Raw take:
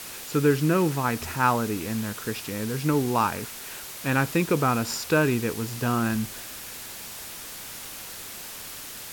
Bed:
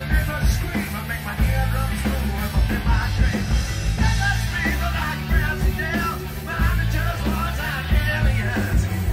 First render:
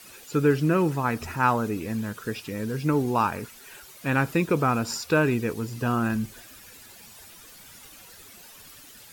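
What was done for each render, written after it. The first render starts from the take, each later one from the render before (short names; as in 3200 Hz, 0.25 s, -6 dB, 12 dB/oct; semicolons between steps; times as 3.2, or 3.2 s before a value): denoiser 12 dB, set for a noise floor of -39 dBFS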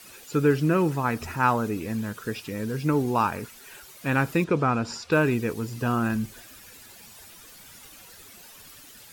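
4.44–5.12 air absorption 85 m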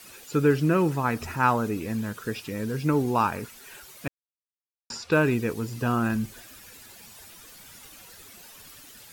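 4.08–4.9 mute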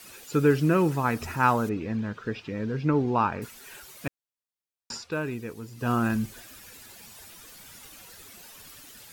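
1.69–3.42 air absorption 190 m; 4.95–5.91 dip -9 dB, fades 0.14 s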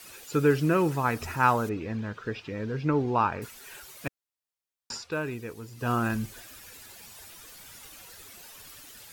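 bell 210 Hz -4.5 dB 1 oct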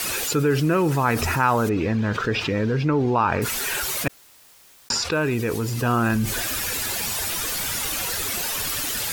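fast leveller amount 70%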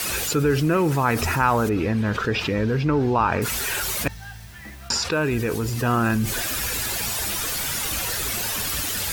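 add bed -18.5 dB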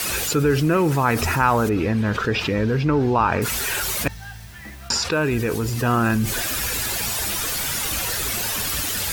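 gain +1.5 dB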